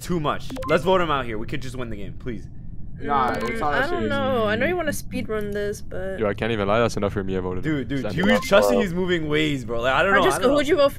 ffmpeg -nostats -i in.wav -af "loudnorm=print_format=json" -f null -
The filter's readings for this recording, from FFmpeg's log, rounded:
"input_i" : "-21.5",
"input_tp" : "-3.9",
"input_lra" : "6.2",
"input_thresh" : "-31.9",